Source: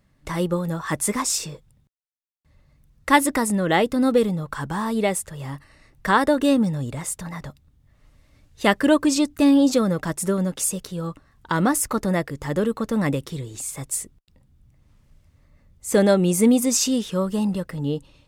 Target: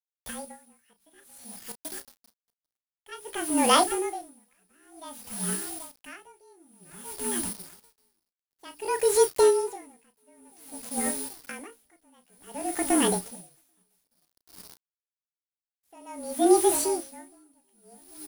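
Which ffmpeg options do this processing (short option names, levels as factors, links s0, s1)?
-filter_complex "[0:a]acrossover=split=5600[s0][s1];[s1]acompressor=threshold=0.0141:ratio=4:attack=1:release=60[s2];[s0][s2]amix=inputs=2:normalize=0,aeval=exprs='val(0)+0.0398*sin(2*PI*6000*n/s)':c=same,asetrate=72056,aresample=44100,atempo=0.612027,afreqshift=-38,bandreject=f=50:t=h:w=6,bandreject=f=100:t=h:w=6,bandreject=f=150:t=h:w=6,bandreject=f=200:t=h:w=6,bandreject=f=250:t=h:w=6,bandreject=f=300:t=h:w=6,bandreject=f=350:t=h:w=6,asplit=2[s3][s4];[s4]adelay=786,lowpass=f=1900:p=1,volume=0.168,asplit=2[s5][s6];[s6]adelay=786,lowpass=f=1900:p=1,volume=0.29,asplit=2[s7][s8];[s8]adelay=786,lowpass=f=1900:p=1,volume=0.29[s9];[s3][s5][s7][s9]amix=inputs=4:normalize=0,aeval=exprs='val(0)*gte(abs(val(0)),0.0447)':c=same,asplit=2[s10][s11];[s11]adelay=33,volume=0.266[s12];[s10][s12]amix=inputs=2:normalize=0,aeval=exprs='val(0)*pow(10,-39*(0.5-0.5*cos(2*PI*0.54*n/s))/20)':c=same"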